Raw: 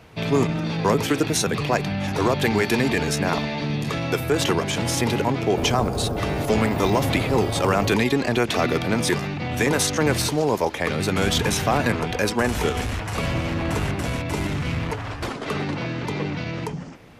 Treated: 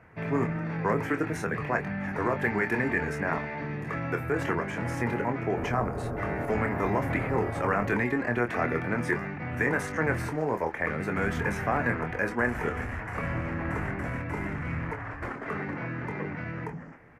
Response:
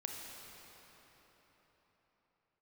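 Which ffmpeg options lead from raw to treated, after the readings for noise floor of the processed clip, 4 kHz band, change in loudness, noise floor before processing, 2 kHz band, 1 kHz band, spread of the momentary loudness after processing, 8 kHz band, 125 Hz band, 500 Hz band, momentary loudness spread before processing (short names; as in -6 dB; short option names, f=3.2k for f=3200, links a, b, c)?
-39 dBFS, -23.5 dB, -7.0 dB, -32 dBFS, -3.0 dB, -5.5 dB, 7 LU, -21.5 dB, -7.5 dB, -7.5 dB, 7 LU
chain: -filter_complex "[0:a]highshelf=f=2.6k:t=q:w=3:g=-12,asplit=2[a][b];[b]adelay=25,volume=-7.5dB[c];[a][c]amix=inputs=2:normalize=0,volume=-8.5dB"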